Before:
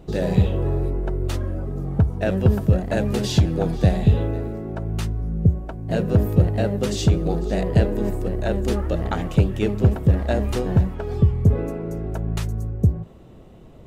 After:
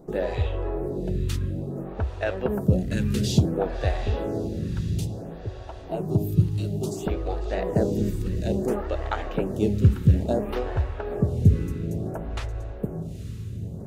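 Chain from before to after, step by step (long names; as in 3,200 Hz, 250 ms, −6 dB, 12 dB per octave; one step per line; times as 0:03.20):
0:04.81–0:07.06: phaser with its sweep stopped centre 340 Hz, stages 8
feedback delay with all-pass diffusion 879 ms, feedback 54%, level −12 dB
phaser with staggered stages 0.58 Hz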